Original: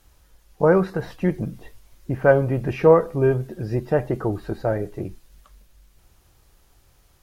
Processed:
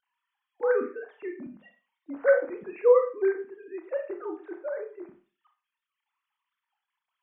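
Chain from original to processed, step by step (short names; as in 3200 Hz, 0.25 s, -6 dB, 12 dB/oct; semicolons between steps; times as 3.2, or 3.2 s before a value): sine-wave speech; wow and flutter 25 cents; Schroeder reverb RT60 0.36 s, combs from 25 ms, DRR 4.5 dB; gain -8.5 dB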